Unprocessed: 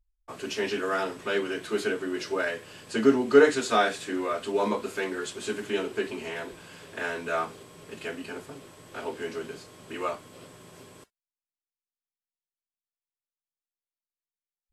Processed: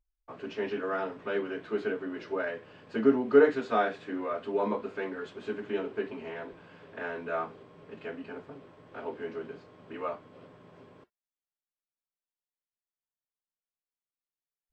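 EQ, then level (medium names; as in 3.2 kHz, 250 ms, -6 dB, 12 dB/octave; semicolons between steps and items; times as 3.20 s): tape spacing loss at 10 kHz 38 dB; bass shelf 120 Hz -8.5 dB; band-stop 360 Hz, Q 12; 0.0 dB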